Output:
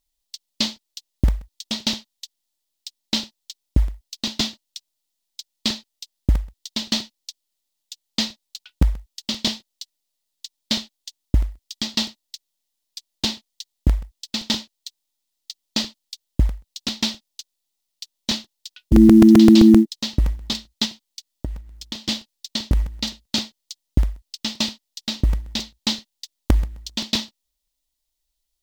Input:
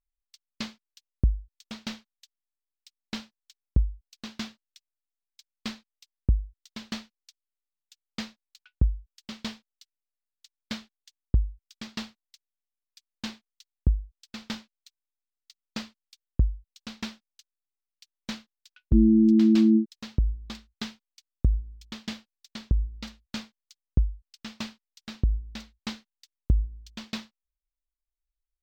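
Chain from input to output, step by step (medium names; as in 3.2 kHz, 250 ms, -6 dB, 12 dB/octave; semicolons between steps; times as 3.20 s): resonant high shelf 2.6 kHz +10.5 dB, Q 1.5; in parallel at 0 dB: peak limiter -17.5 dBFS, peak gain reduction 8.5 dB; 20.85–22.09 s: on the sum: compression 3:1, threshold -31 dBFS, peak gain reduction 13.5 dB; short-mantissa float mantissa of 4-bit; small resonant body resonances 290/610/870/1900 Hz, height 9 dB, ringing for 25 ms; crackling interface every 0.13 s, samples 128, repeat, from 0.76 s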